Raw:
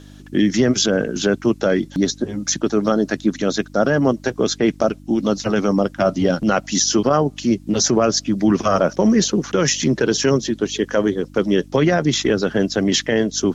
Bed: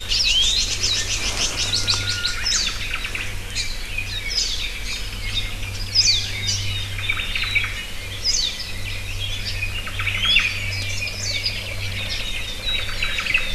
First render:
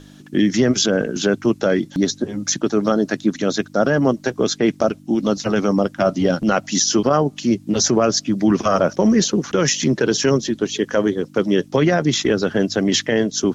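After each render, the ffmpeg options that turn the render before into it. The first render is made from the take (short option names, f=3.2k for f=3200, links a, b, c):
-af "bandreject=f=50:t=h:w=4,bandreject=f=100:t=h:w=4"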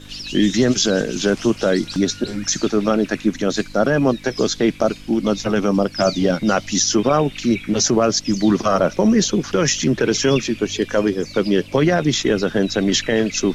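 -filter_complex "[1:a]volume=-13dB[a];[0:a][a]amix=inputs=2:normalize=0"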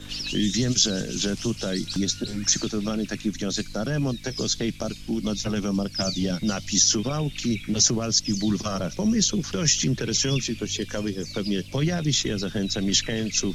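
-filter_complex "[0:a]acrossover=split=180|3000[a][b][c];[b]acompressor=threshold=-34dB:ratio=3[d];[a][d][c]amix=inputs=3:normalize=0"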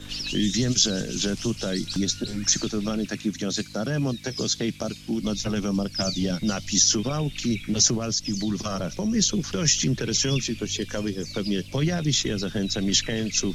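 -filter_complex "[0:a]asettb=1/sr,asplit=3[a][b][c];[a]atrim=end=3.064[d];[b]atrim=start=3.06:end=5.22,asetpts=PTS-STARTPTS,afade=t=in:d=0.004:c=qsin,afade=t=out:st=2.156:d=0.004:c=qsin,highpass=74[e];[c]atrim=start=5.216[f];[d][e]acrossfade=d=0.004:c1=hsin:c2=qsin[g];[g][f]acrossfade=d=0.004:c1=qsin:c2=hsin,asettb=1/sr,asplit=3[h][i][j];[h]atrim=end=7.964[k];[i]atrim=start=7.96:end=9.14,asetpts=PTS-STARTPTS,afade=t=in:d=0.004:c=qsin,afade=t=out:st=1.176:d=0.004:c=qsin,acompressor=threshold=-24dB:ratio=2:attack=3.2:release=140:knee=1:detection=peak[l];[j]atrim=start=9.136[m];[k][l]acrossfade=d=0.004:c1=hsin:c2=qsin[n];[n][m]acrossfade=d=0.004:c1=qsin:c2=hsin"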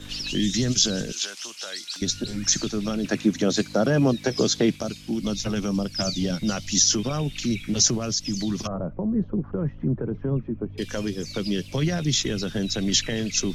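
-filter_complex "[0:a]asettb=1/sr,asplit=3[a][b][c];[a]atrim=end=1.124[d];[b]atrim=start=1.12:end=2.02,asetpts=PTS-STARTPTS,afade=t=in:d=0.004:c=qsin,afade=t=out:st=0.896:d=0.004:c=qsin,highpass=990[e];[c]atrim=start=2.016[f];[d][e]acrossfade=d=0.004:c1=hsin:c2=qsin[g];[g][f]acrossfade=d=0.004:c1=qsin:c2=hsin,asettb=1/sr,asplit=3[h][i][j];[h]atrim=end=3.044[k];[i]atrim=start=3.04:end=4.76,asetpts=PTS-STARTPTS,afade=t=in:d=0.004:c=qsin,afade=t=out:st=1.716:d=0.004:c=qsin,equalizer=f=560:w=0.38:g=9[l];[j]atrim=start=4.756[m];[k][l]acrossfade=d=0.004:c1=hsin:c2=qsin[n];[n][m]acrossfade=d=0.004:c1=qsin:c2=hsin,asettb=1/sr,asplit=3[o][p][q];[o]atrim=end=8.674[r];[p]atrim=start=8.67:end=10.78,asetpts=PTS-STARTPTS,afade=t=in:d=0.004:c=qsin,afade=t=out:st=2.106:d=0.004:c=qsin,lowpass=f=1.1k:w=0.5412,lowpass=f=1.1k:w=1.3066[s];[q]atrim=start=10.776[t];[r][s]acrossfade=d=0.004:c1=hsin:c2=qsin[u];[u][t]acrossfade=d=0.004:c1=qsin:c2=hsin"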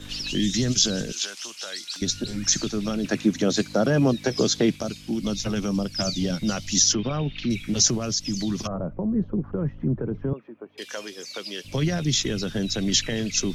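-filter_complex "[0:a]asplit=3[a][b][c];[a]afade=t=out:st=6.92:d=0.02[d];[b]lowpass=f=3.9k:w=0.5412,lowpass=f=3.9k:w=1.3066,afade=t=in:st=6.92:d=0.02,afade=t=out:st=7.49:d=0.02[e];[c]afade=t=in:st=7.49:d=0.02[f];[d][e][f]amix=inputs=3:normalize=0,asettb=1/sr,asplit=3[g][h][i];[g]atrim=end=10.334[j];[h]atrim=start=10.33:end=11.65,asetpts=PTS-STARTPTS,afade=t=in:d=0.004:c=qsin,afade=t=out:st=1.316:d=0.004:c=qsin,highpass=590[k];[i]atrim=start=11.646[l];[j][k]acrossfade=d=0.004:c1=hsin:c2=qsin[m];[m][l]acrossfade=d=0.004:c1=qsin:c2=hsin"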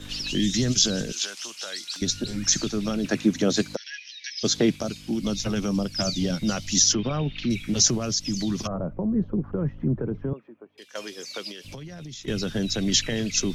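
-filter_complex "[0:a]asplit=3[a][b][c];[a]afade=t=out:st=3.75:d=0.02[d];[b]asuperpass=centerf=3300:order=20:qfactor=0.75,afade=t=in:st=3.75:d=0.02,afade=t=out:st=4.43:d=0.02[e];[c]afade=t=in:st=4.43:d=0.02[f];[d][e][f]amix=inputs=3:normalize=0,asettb=1/sr,asplit=3[g][h][i];[g]atrim=end=11.514[j];[h]atrim=start=11.51:end=12.28,asetpts=PTS-STARTPTS,afade=t=in:d=0.004:c=qsin,afade=t=out:st=0.766:d=0.004:c=qsin,acompressor=threshold=-35dB:ratio=20:attack=3.2:release=140:knee=1:detection=peak[k];[i]atrim=start=12.276[l];[j][k]acrossfade=d=0.004:c1=hsin:c2=qsin[m];[m][l]acrossfade=d=0.004:c1=qsin:c2=hsin,asplit=2[n][o];[n]atrim=end=10.95,asetpts=PTS-STARTPTS,afade=t=out:st=10.05:d=0.9:silence=0.188365[p];[o]atrim=start=10.95,asetpts=PTS-STARTPTS,afade=t=in:d=0.004:c=hsin:silence=0.188365[q];[p][q]concat=n=2:v=0:a=1"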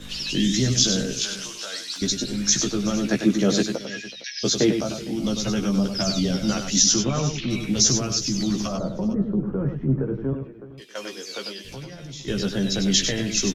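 -filter_complex "[0:a]asplit=2[a][b];[b]adelay=15,volume=-4.5dB[c];[a][c]amix=inputs=2:normalize=0,asplit=2[d][e];[e]aecho=0:1:98|375|459:0.447|0.112|0.119[f];[d][f]amix=inputs=2:normalize=0"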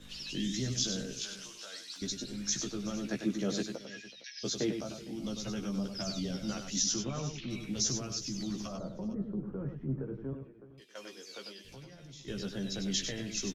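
-af "volume=-13dB"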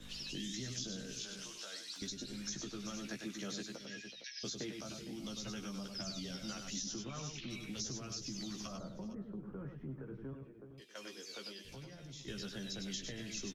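-filter_complex "[0:a]acrossover=split=390|960|5100[a][b][c][d];[a]acompressor=threshold=-45dB:ratio=4[e];[b]acompressor=threshold=-57dB:ratio=4[f];[c]acompressor=threshold=-47dB:ratio=4[g];[d]acompressor=threshold=-49dB:ratio=4[h];[e][f][g][h]amix=inputs=4:normalize=0"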